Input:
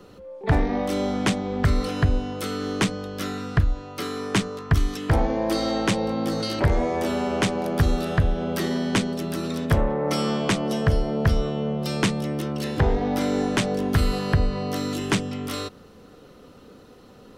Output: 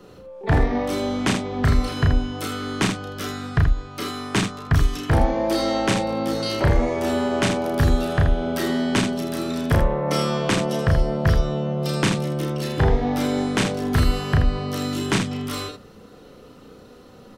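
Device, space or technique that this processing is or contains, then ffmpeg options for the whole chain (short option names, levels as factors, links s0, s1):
slapback doubling: -filter_complex "[0:a]asplit=3[s0][s1][s2];[s1]adelay=33,volume=0.708[s3];[s2]adelay=80,volume=0.447[s4];[s0][s3][s4]amix=inputs=3:normalize=0"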